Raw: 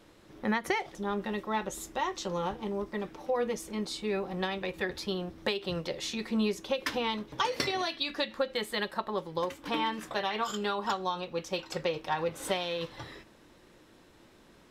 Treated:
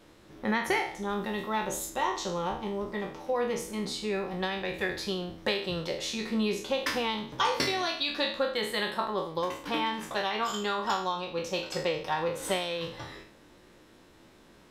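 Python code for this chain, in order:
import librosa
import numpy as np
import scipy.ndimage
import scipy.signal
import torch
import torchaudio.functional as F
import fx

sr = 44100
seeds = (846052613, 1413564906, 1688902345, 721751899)

y = fx.spec_trails(x, sr, decay_s=0.51)
y = fx.high_shelf(y, sr, hz=10000.0, db=9.5, at=(1.09, 1.9))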